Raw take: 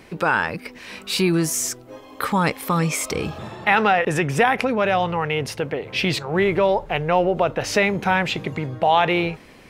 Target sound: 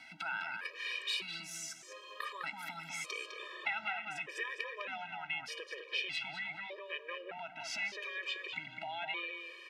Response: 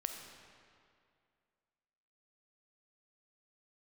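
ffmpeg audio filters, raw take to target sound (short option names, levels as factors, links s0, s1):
-filter_complex "[0:a]acompressor=threshold=0.0251:ratio=5,bandpass=f=2700:t=q:w=1.2:csg=0,asplit=2[s0][s1];[s1]adelay=205,lowpass=f=2900:p=1,volume=0.631,asplit=2[s2][s3];[s3]adelay=205,lowpass=f=2900:p=1,volume=0.29,asplit=2[s4][s5];[s5]adelay=205,lowpass=f=2900:p=1,volume=0.29,asplit=2[s6][s7];[s7]adelay=205,lowpass=f=2900:p=1,volume=0.29[s8];[s0][s2][s4][s6][s8]amix=inputs=5:normalize=0,asplit=2[s9][s10];[1:a]atrim=start_sample=2205[s11];[s10][s11]afir=irnorm=-1:irlink=0,volume=0.266[s12];[s9][s12]amix=inputs=2:normalize=0,afftfilt=real='re*gt(sin(2*PI*0.82*pts/sr)*(1-2*mod(floor(b*sr/1024/320),2)),0)':imag='im*gt(sin(2*PI*0.82*pts/sr)*(1-2*mod(floor(b*sr/1024/320),2)),0)':win_size=1024:overlap=0.75,volume=1.19"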